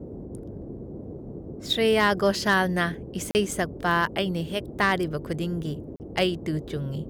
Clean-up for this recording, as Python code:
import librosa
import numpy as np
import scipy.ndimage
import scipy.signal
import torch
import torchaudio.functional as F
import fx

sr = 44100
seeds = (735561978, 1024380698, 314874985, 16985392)

y = fx.fix_declip(x, sr, threshold_db=-13.0)
y = fx.fix_interpolate(y, sr, at_s=(3.31, 5.96), length_ms=39.0)
y = fx.noise_reduce(y, sr, print_start_s=0.97, print_end_s=1.47, reduce_db=30.0)